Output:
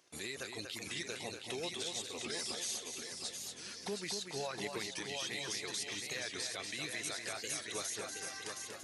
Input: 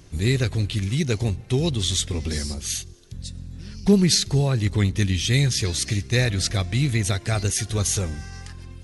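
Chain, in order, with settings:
reverb reduction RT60 0.82 s
noise gate −45 dBFS, range −13 dB
high-pass filter 550 Hz 12 dB per octave
downward compressor, threshold −36 dBFS, peak gain reduction 18.5 dB
brickwall limiter −30 dBFS, peak gain reduction 9.5 dB
on a send: echo machine with several playback heads 239 ms, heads first and third, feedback 49%, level −6 dB
on the sum: wow of a warped record 45 rpm, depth 100 cents

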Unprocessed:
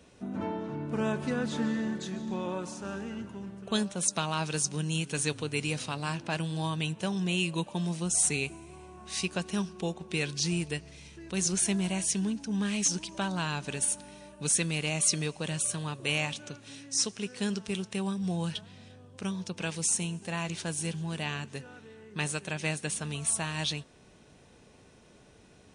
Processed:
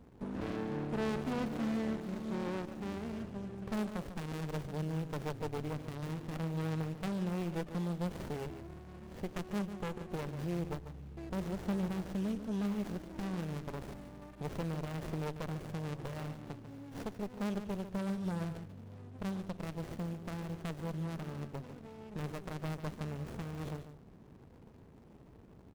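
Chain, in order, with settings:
running median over 41 samples
dynamic equaliser 190 Hz, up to −6 dB, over −43 dBFS, Q 0.75
soft clipping −30.5 dBFS, distortion −19 dB
single-tap delay 145 ms −10.5 dB
windowed peak hold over 33 samples
level +3 dB

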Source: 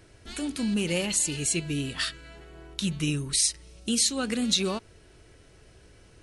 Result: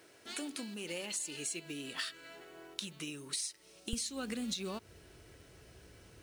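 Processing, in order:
downward compressor 12 to 1, threshold −33 dBFS, peak gain reduction 14.5 dB
high-pass filter 310 Hz 12 dB per octave, from 0:03.93 54 Hz
log-companded quantiser 6 bits
level −2 dB

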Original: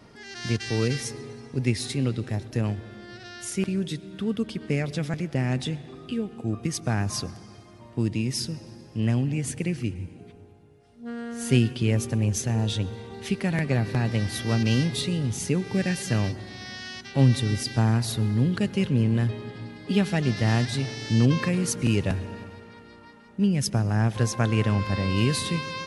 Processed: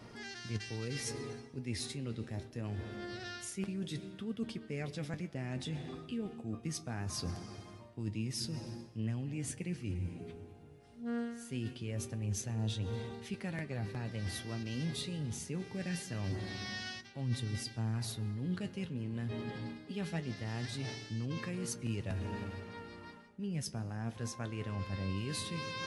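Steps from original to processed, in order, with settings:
reversed playback
downward compressor 6 to 1, threshold −35 dBFS, peak gain reduction 19.5 dB
reversed playback
flanger 0.23 Hz, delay 8.2 ms, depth 5.2 ms, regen +61%
level +3 dB

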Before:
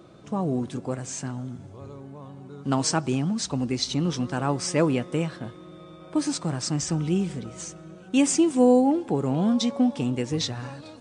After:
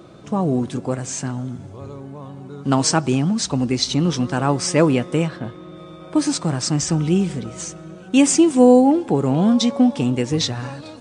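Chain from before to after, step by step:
0:05.27–0:05.76: high-shelf EQ 5,200 Hz → 8,200 Hz −11 dB
level +6.5 dB

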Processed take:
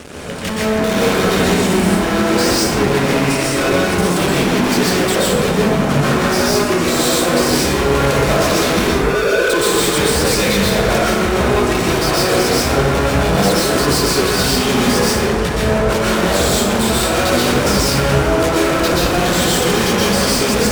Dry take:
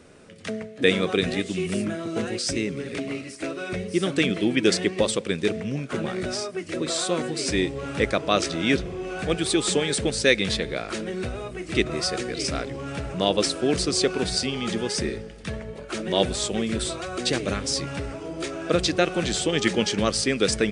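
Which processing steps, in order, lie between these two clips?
0:08.89–0:09.50: three sine waves on the formant tracks
fuzz pedal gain 43 dB, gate −52 dBFS
dense smooth reverb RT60 1.3 s, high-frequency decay 0.45×, pre-delay 110 ms, DRR −6.5 dB
level −7.5 dB

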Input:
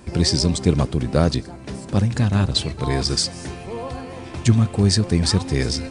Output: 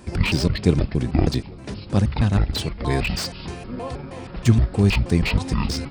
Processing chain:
pitch shifter gated in a rhythm −11 semitones, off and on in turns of 158 ms
slew-rate limiting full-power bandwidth 260 Hz

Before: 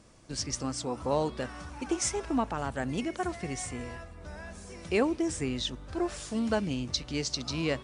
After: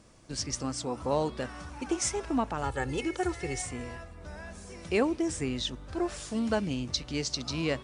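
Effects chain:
0:02.63–0:03.62: comb filter 2.3 ms, depth 89%

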